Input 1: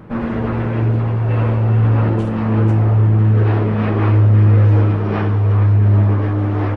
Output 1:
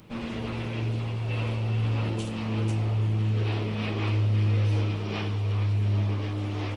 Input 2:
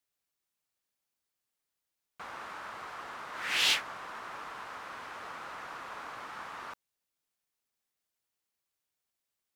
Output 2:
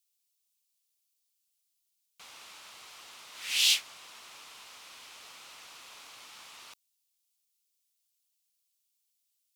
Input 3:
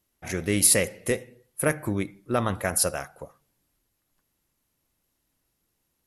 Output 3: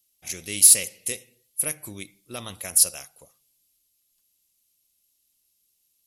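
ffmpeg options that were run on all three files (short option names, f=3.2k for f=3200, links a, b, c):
-af "aexciter=amount=5.8:drive=7.2:freq=2.4k,volume=-13dB"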